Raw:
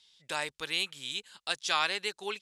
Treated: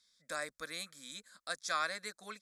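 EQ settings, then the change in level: fixed phaser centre 580 Hz, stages 8; -2.0 dB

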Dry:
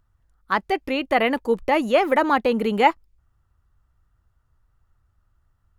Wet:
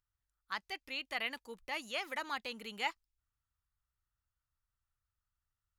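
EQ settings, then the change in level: passive tone stack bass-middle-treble 5-5-5; low shelf 280 Hz -6 dB; dynamic EQ 5400 Hz, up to +8 dB, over -52 dBFS, Q 0.7; -5.5 dB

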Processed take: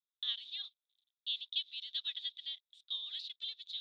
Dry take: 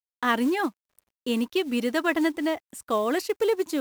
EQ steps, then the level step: Butterworth band-pass 3600 Hz, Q 6.6; +8.5 dB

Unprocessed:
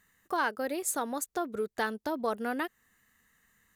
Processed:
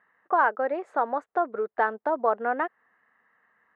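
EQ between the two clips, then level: Butterworth band-pass 1100 Hz, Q 0.83; tilt -4.5 dB/oct; +9.0 dB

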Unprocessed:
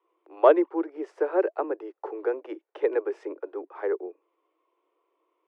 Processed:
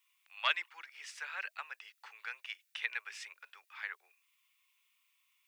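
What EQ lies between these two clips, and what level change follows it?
ladder high-pass 2000 Hz, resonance 25%; tilt +3 dB/oct; notch 3100 Hz, Q 24; +13.5 dB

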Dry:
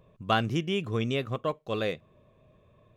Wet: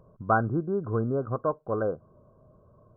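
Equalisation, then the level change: brick-wall FIR low-pass 1600 Hz; dynamic EQ 180 Hz, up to -4 dB, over -43 dBFS, Q 1.7; +3.0 dB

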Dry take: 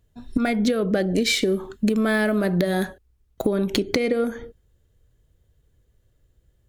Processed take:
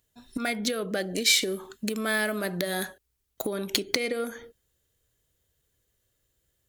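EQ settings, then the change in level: tilt +3 dB/oct; -4.5 dB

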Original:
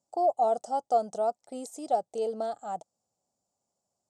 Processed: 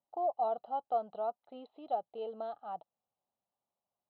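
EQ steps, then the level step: rippled Chebyshev low-pass 4100 Hz, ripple 9 dB; -2.5 dB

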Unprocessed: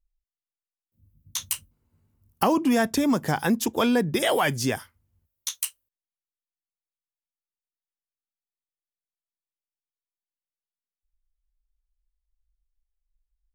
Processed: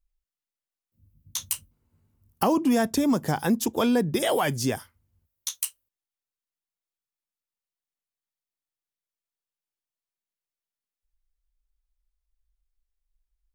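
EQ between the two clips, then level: dynamic EQ 2000 Hz, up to -5 dB, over -40 dBFS, Q 0.75; 0.0 dB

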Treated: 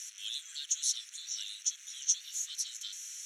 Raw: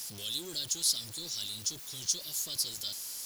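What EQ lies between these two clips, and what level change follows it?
HPF 1400 Hz 24 dB/oct; synth low-pass 5900 Hz, resonance Q 6.5; fixed phaser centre 2100 Hz, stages 4; 0.0 dB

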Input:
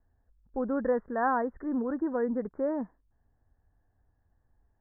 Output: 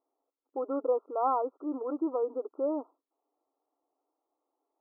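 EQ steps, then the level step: brick-wall FIR band-pass 270–1400 Hz; 0.0 dB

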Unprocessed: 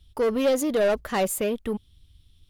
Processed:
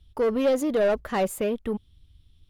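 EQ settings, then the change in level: high shelf 3200 Hz -8 dB; 0.0 dB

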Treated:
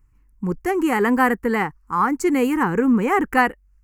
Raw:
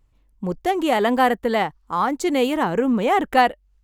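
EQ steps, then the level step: dynamic EQ 480 Hz, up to +5 dB, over -28 dBFS, Q 1; fixed phaser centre 1500 Hz, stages 4; +3.5 dB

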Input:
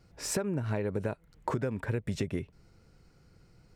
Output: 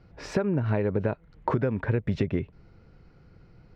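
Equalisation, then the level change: air absorption 250 m; +6.5 dB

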